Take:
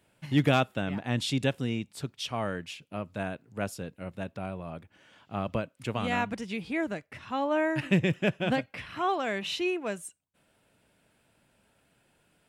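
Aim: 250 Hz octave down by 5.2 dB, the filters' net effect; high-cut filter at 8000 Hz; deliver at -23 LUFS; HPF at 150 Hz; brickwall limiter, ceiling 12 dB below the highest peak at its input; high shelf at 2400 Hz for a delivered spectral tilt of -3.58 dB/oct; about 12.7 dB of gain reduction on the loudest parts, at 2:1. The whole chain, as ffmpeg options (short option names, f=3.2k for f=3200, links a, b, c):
-af "highpass=150,lowpass=8k,equalizer=f=250:t=o:g=-6,highshelf=f=2.4k:g=-5.5,acompressor=threshold=-46dB:ratio=2,volume=24.5dB,alimiter=limit=-12dB:level=0:latency=1"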